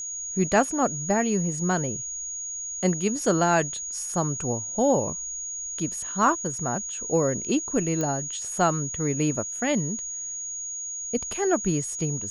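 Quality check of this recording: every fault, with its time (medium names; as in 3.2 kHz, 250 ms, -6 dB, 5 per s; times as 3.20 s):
whine 6.7 kHz -31 dBFS
8.01 s: pop -15 dBFS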